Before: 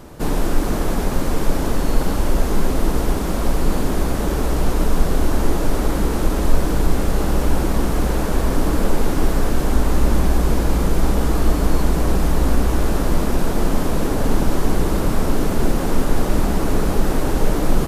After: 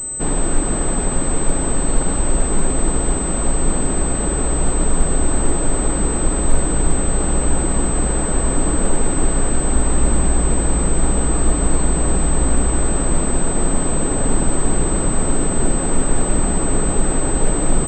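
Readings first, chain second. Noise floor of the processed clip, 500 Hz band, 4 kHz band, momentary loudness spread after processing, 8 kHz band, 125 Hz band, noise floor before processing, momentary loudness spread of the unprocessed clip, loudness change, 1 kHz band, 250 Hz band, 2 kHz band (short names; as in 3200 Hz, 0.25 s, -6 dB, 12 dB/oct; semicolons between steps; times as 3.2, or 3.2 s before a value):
-20 dBFS, 0.0 dB, -3.0 dB, 1 LU, +14.0 dB, 0.0 dB, -21 dBFS, 2 LU, +2.0 dB, 0.0 dB, 0.0 dB, 0.0 dB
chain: pulse-width modulation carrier 8100 Hz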